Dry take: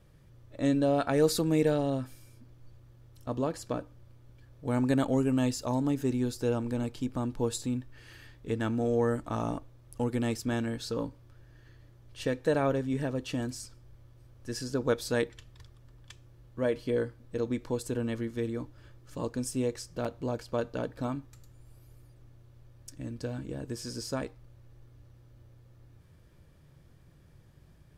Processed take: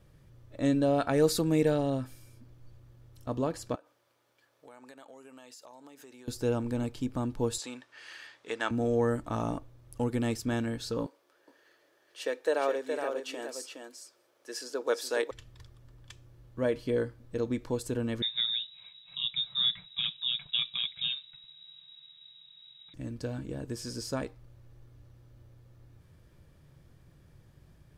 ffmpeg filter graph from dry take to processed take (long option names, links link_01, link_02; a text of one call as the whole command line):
ffmpeg -i in.wav -filter_complex "[0:a]asettb=1/sr,asplit=3[link_01][link_02][link_03];[link_01]atrim=end=3.754[link_04];[link_02]atrim=start=3.75:end=6.28,asetpts=PTS-STARTPTS,afade=type=in:duration=0.004:curve=qsin,afade=type=out:start_time=2.526:duration=0.004:curve=qsin,highpass=610,acompressor=threshold=-49dB:ratio=5:attack=3.2:release=140:knee=1:detection=peak[link_05];[link_03]atrim=start=6.276[link_06];[link_04][link_05]acrossfade=duration=0.004:curve1=hsin:curve2=qsin[link_07];[link_07][link_06]acrossfade=duration=0.004:curve1=qsin:curve2=hsin,asettb=1/sr,asplit=3[link_08][link_09][link_10];[link_08]atrim=end=7.584[link_11];[link_09]atrim=start=7.58:end=8.71,asetpts=PTS-STARTPTS,afade=type=in:duration=0.004:curve=qsin,afade=type=out:start_time=1.126:duration=0.004:curve=qsin,highpass=730,lowpass=7600,acontrast=64[link_12];[link_10]atrim=start=8.706[link_13];[link_11][link_12]acrossfade=duration=0.004:curve1=hsin:curve2=qsin[link_14];[link_14][link_13]acrossfade=duration=0.004:curve1=qsin:curve2=hsin,asettb=1/sr,asplit=3[link_15][link_16][link_17];[link_15]atrim=end=11.064[link_18];[link_16]atrim=start=11.06:end=15.31,asetpts=PTS-STARTPTS,afade=type=in:duration=0.004:curve=qsin,afade=type=out:start_time=4.246:duration=0.004:curve=qsin,highpass=frequency=380:width=0.5412,highpass=frequency=380:width=1.3066,aecho=1:1:417:0.501,atrim=end_sample=187425[link_19];[link_17]atrim=start=15.306[link_20];[link_18][link_19]acrossfade=duration=0.004:curve1=hsin:curve2=qsin[link_21];[link_21][link_20]acrossfade=duration=0.004:curve1=qsin:curve2=hsin,asettb=1/sr,asplit=3[link_22][link_23][link_24];[link_22]atrim=end=18.224[link_25];[link_23]atrim=start=18.22:end=22.94,asetpts=PTS-STARTPTS,afade=type=in:duration=0.004:curve=qsin,afade=type=out:start_time=4.716:duration=0.004:curve=qsin,lowpass=frequency=3300:width_type=q:width=0.5098,lowpass=frequency=3300:width_type=q:width=0.6013,lowpass=frequency=3300:width_type=q:width=0.9,lowpass=frequency=3300:width_type=q:width=2.563,afreqshift=-3900,lowshelf=frequency=230:width_type=q:width=3:gain=13.5,aecho=1:1:6.8:0.49,atrim=end_sample=208152[link_26];[link_24]atrim=start=22.936[link_27];[link_25][link_26]acrossfade=duration=0.004:curve1=hsin:curve2=qsin[link_28];[link_28][link_27]acrossfade=duration=0.004:curve1=qsin:curve2=hsin" out.wav